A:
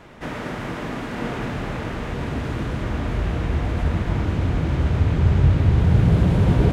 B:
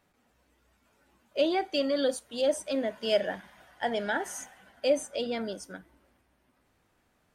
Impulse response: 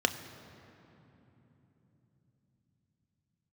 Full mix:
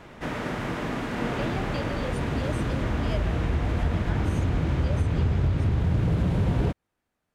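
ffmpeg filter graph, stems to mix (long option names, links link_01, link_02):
-filter_complex "[0:a]aeval=exprs='0.335*(abs(mod(val(0)/0.335+3,4)-2)-1)':channel_layout=same,volume=-1dB[link_01];[1:a]volume=-10dB[link_02];[link_01][link_02]amix=inputs=2:normalize=0,acompressor=threshold=-20dB:ratio=6"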